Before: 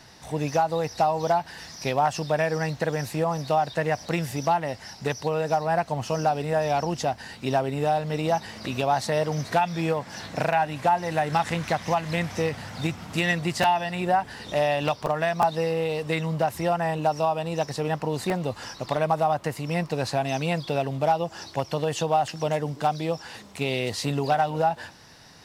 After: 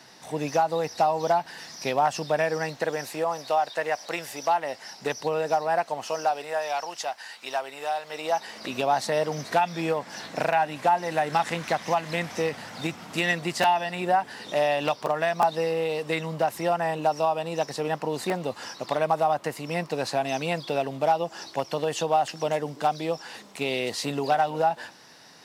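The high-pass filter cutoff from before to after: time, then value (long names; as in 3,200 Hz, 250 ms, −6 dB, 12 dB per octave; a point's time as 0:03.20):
0:02.33 200 Hz
0:03.56 480 Hz
0:04.45 480 Hz
0:05.28 220 Hz
0:06.80 850 Hz
0:08.01 850 Hz
0:08.80 220 Hz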